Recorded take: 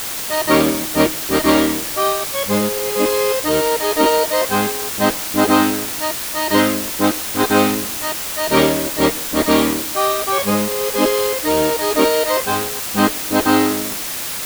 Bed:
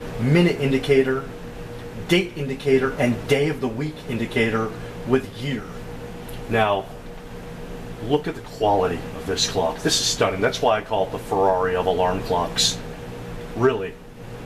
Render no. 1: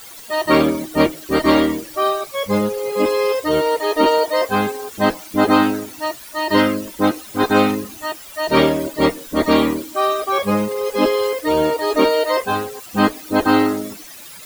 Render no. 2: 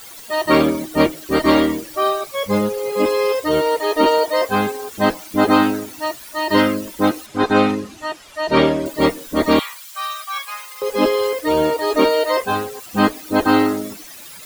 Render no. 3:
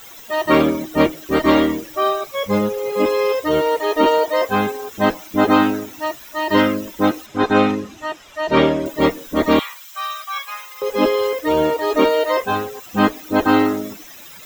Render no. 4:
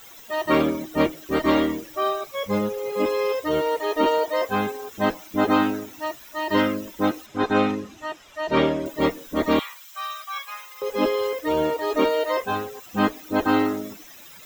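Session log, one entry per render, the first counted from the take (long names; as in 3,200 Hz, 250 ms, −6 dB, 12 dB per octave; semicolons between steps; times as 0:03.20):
broadband denoise 16 dB, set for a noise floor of −25 dBFS
0:07.26–0:08.86: high-frequency loss of the air 59 metres; 0:09.59–0:10.82: Bessel high-pass filter 1,600 Hz, order 6
parametric band 9,700 Hz −14 dB 0.33 octaves; notch filter 4,500 Hz, Q 6
level −5.5 dB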